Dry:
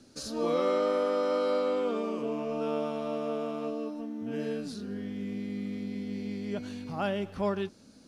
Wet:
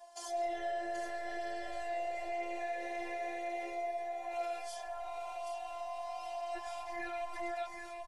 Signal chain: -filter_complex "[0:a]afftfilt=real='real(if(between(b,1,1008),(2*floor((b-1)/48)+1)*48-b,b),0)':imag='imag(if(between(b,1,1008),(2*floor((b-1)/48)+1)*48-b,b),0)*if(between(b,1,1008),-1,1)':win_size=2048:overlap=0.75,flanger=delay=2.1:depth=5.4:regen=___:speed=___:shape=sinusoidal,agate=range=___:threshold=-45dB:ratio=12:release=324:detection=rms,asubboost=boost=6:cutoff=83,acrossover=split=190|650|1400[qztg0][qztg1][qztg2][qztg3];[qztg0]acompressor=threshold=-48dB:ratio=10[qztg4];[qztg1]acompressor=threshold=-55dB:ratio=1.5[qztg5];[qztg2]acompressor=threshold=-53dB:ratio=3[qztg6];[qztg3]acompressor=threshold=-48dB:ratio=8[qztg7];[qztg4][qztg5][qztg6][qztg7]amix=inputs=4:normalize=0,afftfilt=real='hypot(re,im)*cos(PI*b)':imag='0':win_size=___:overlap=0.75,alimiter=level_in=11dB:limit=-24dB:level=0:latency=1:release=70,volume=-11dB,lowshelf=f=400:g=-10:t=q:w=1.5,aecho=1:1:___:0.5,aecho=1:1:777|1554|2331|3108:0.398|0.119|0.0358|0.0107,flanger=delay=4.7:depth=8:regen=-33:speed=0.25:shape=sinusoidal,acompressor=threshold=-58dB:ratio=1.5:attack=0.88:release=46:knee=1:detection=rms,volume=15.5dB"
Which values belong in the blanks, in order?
39, 1.6, -8dB, 512, 5.7